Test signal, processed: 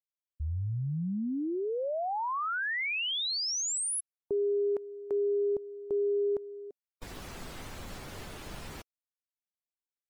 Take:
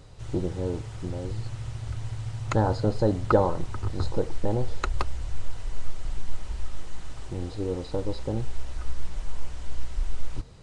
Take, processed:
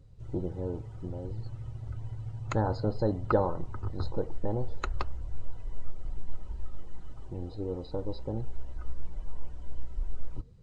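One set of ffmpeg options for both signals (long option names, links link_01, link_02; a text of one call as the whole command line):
ffmpeg -i in.wav -af "afftdn=noise_reduction=15:noise_floor=-46,volume=-5dB" out.wav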